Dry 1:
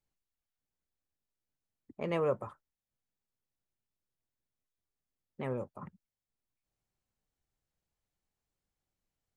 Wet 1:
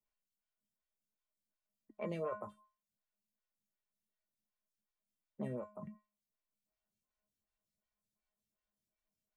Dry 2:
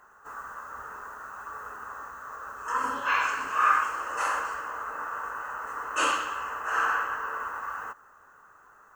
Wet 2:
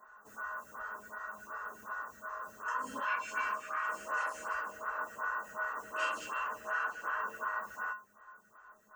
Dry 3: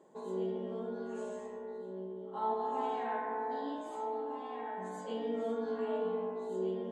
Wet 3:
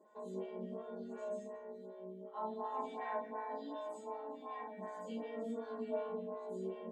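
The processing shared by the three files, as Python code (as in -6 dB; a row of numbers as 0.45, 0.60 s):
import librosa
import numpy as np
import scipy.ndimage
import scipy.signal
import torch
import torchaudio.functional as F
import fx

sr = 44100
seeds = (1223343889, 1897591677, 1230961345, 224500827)

p1 = fx.over_compress(x, sr, threshold_db=-32.0, ratio=-0.5)
p2 = x + (p1 * librosa.db_to_amplitude(1.5))
p3 = fx.comb_fb(p2, sr, f0_hz=210.0, decay_s=0.3, harmonics='odd', damping=0.0, mix_pct=90)
p4 = fx.stagger_phaser(p3, sr, hz=2.7)
y = p4 * librosa.db_to_amplitude(5.5)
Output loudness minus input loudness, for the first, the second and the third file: -8.0, -8.0, -6.0 LU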